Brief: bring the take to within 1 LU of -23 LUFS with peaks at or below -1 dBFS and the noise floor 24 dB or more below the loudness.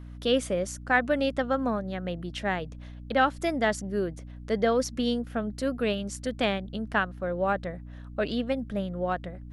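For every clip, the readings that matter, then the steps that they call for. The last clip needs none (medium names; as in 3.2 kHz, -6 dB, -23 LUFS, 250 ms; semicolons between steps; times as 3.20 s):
hum 60 Hz; highest harmonic 300 Hz; hum level -39 dBFS; loudness -28.5 LUFS; peak level -10.0 dBFS; loudness target -23.0 LUFS
-> de-hum 60 Hz, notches 5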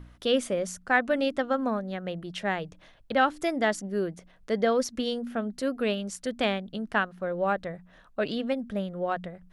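hum not found; loudness -29.0 LUFS; peak level -10.0 dBFS; loudness target -23.0 LUFS
-> trim +6 dB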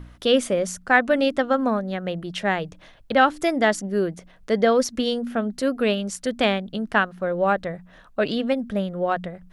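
loudness -23.0 LUFS; peak level -4.0 dBFS; noise floor -51 dBFS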